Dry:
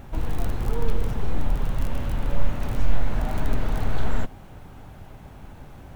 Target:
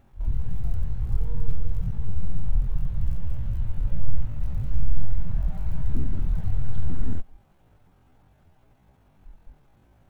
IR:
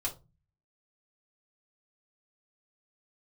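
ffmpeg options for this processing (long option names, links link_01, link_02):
-af "afwtdn=0.112,atempo=0.59,volume=1dB"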